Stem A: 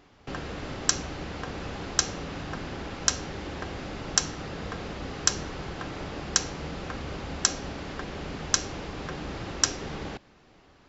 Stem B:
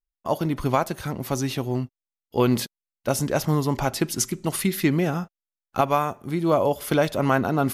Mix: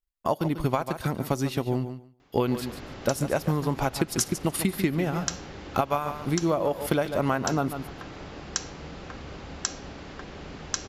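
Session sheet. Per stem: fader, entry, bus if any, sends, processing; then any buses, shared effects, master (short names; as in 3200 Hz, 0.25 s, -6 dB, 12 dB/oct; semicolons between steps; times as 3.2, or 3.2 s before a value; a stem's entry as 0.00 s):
-4.5 dB, 2.20 s, no send, no echo send, dry
+1.5 dB, 0.00 s, no send, echo send -13 dB, notch 6200 Hz, Q 13; transient shaper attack +4 dB, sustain -7 dB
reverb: off
echo: feedback echo 0.143 s, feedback 15%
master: compressor 4:1, threshold -22 dBFS, peak gain reduction 10.5 dB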